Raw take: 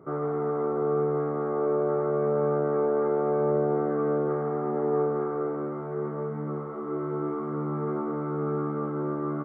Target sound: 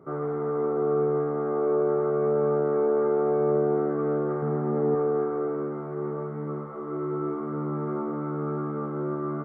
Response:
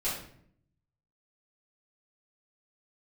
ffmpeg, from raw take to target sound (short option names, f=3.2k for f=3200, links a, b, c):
-filter_complex "[0:a]asettb=1/sr,asplit=3[a][b][c];[a]atrim=end=4.424[d];[b]atrim=start=4.42:end=4.95,asetpts=PTS-STARTPTS,afade=t=in:d=0.004:c=qsin,afade=t=out:st=0.526:d=0.004:c=qsin,equalizer=f=160:t=o:w=1.8:g=7.5[e];[c]atrim=start=4.946[f];[d][e]acrossfade=d=0.004:c1=hsin:c2=qsin[g];[g][f]acrossfade=d=0.004:c1=qsin:c2=hsin,asplit=2[h][i];[1:a]atrim=start_sample=2205,asetrate=24255,aresample=44100[j];[i][j]afir=irnorm=-1:irlink=0,volume=-19dB[k];[h][k]amix=inputs=2:normalize=0,volume=-2dB"